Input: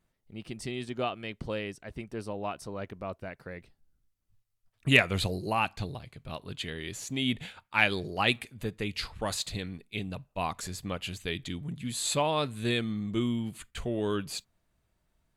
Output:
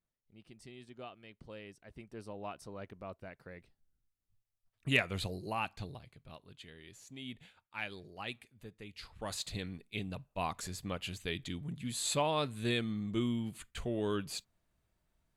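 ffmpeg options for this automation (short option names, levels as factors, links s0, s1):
-af "volume=1.58,afade=t=in:st=1.42:d=1.06:silence=0.398107,afade=t=out:st=5.95:d=0.56:silence=0.398107,afade=t=in:st=8.95:d=0.66:silence=0.251189"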